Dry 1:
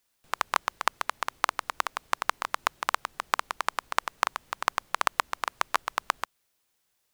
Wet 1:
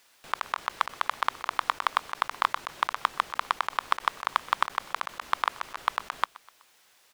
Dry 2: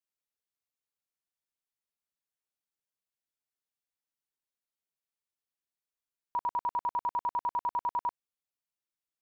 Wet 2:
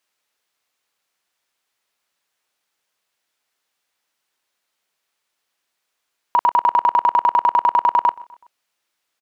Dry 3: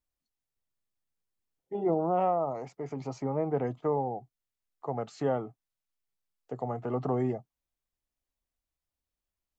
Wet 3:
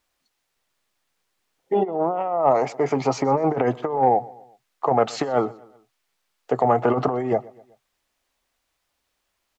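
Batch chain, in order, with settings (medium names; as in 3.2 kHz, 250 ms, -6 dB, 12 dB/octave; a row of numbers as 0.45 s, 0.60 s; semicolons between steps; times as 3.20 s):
compressor with a negative ratio -32 dBFS, ratio -0.5; overdrive pedal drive 16 dB, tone 3.8 kHz, clips at -7 dBFS; feedback delay 125 ms, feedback 48%, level -22 dB; peak normalisation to -6 dBFS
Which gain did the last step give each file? +2.0 dB, +9.5 dB, +7.5 dB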